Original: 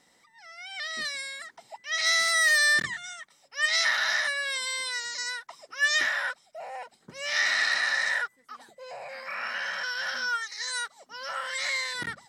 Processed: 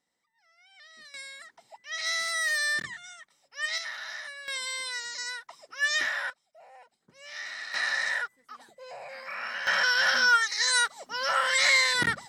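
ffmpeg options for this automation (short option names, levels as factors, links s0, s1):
-af "asetnsamples=n=441:p=0,asendcmd='1.14 volume volume -6dB;3.78 volume volume -12.5dB;4.48 volume volume -2.5dB;6.3 volume volume -13.5dB;7.74 volume volume -2dB;9.67 volume volume 8dB',volume=0.126"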